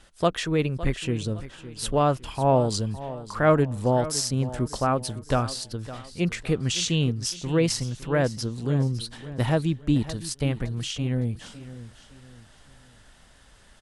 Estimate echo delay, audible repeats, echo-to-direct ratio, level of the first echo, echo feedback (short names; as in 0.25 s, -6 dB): 0.56 s, 3, -14.5 dB, -15.0 dB, 36%